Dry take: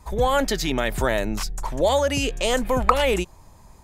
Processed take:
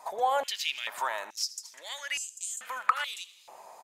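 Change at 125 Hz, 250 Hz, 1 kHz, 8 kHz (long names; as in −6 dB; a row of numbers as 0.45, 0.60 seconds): below −40 dB, below −30 dB, −6.0 dB, −3.5 dB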